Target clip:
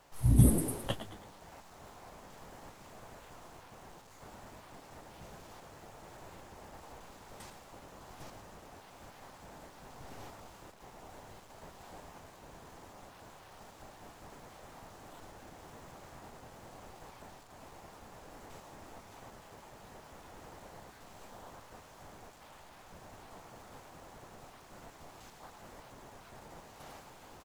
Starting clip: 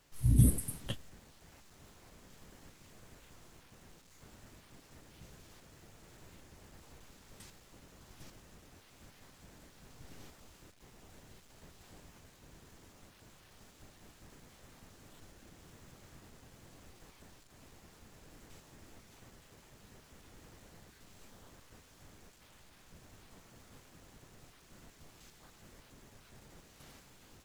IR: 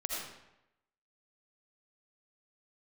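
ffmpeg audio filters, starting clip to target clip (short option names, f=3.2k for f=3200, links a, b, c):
-filter_complex "[0:a]equalizer=f=800:t=o:w=1.6:g=12.5,asplit=2[a][b];[b]asplit=4[c][d][e][f];[c]adelay=110,afreqshift=100,volume=-11dB[g];[d]adelay=220,afreqshift=200,volume=-18.7dB[h];[e]adelay=330,afreqshift=300,volume=-26.5dB[i];[f]adelay=440,afreqshift=400,volume=-34.2dB[j];[g][h][i][j]amix=inputs=4:normalize=0[k];[a][k]amix=inputs=2:normalize=0,volume=1dB"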